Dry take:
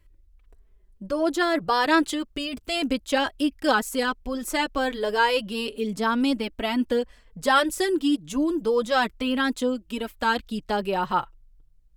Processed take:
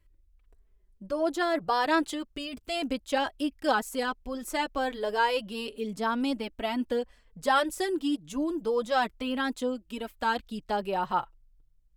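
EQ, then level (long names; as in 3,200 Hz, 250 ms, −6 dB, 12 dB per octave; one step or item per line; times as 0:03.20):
dynamic equaliser 740 Hz, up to +5 dB, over −38 dBFS, Q 1.7
−6.5 dB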